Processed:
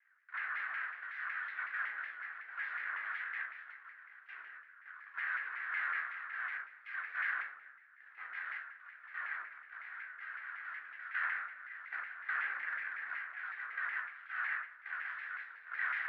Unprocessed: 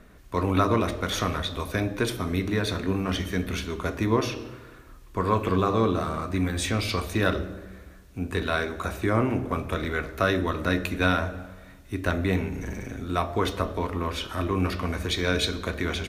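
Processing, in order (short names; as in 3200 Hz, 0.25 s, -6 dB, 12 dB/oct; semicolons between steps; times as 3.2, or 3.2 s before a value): delta modulation 64 kbps, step -35.5 dBFS; compressor 8:1, threshold -25 dBFS, peak gain reduction 8.5 dB; wrapped overs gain 26.5 dB; added harmonics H 4 -9 dB, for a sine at -26.5 dBFS; random-step tremolo, depth 95%; Butterworth band-pass 1700 Hz, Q 3.1; air absorption 210 m; shoebox room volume 770 m³, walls furnished, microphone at 3.6 m; shaped vibrato saw down 5.4 Hz, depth 160 cents; gain +4.5 dB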